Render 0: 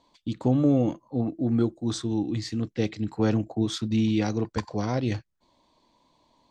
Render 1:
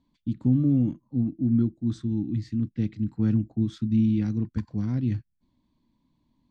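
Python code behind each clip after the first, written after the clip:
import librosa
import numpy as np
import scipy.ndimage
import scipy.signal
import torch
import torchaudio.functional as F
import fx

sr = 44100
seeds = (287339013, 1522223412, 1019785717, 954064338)

y = fx.curve_eq(x, sr, hz=(250.0, 470.0, 750.0, 1600.0, 6400.0), db=(0, -20, -22, -13, -20))
y = y * 10.0 ** (2.5 / 20.0)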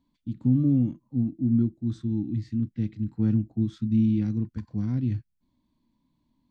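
y = fx.hpss(x, sr, part='percussive', gain_db=-6)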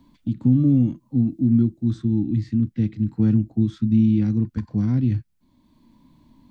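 y = fx.band_squash(x, sr, depth_pct=40)
y = y * 10.0 ** (5.5 / 20.0)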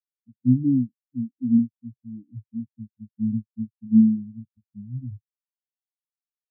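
y = fx.spectral_expand(x, sr, expansion=4.0)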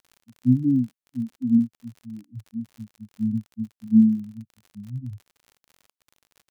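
y = fx.dmg_crackle(x, sr, seeds[0], per_s=52.0, level_db=-39.0)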